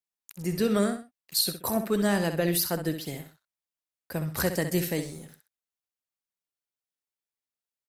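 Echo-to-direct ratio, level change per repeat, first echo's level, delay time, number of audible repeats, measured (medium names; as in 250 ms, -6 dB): -8.5 dB, -10.5 dB, -9.0 dB, 64 ms, 2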